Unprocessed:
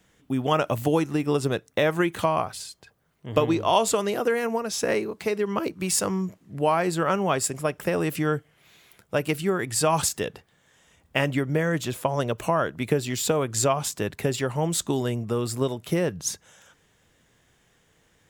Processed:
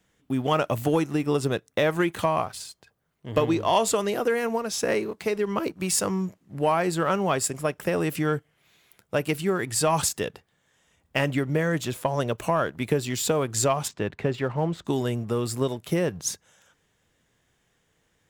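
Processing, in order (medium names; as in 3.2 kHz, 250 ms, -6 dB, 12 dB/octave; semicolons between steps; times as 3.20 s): 13.87–14.84 s: low-pass 3.5 kHz -> 2 kHz 12 dB/octave; waveshaping leveller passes 1; trim -4 dB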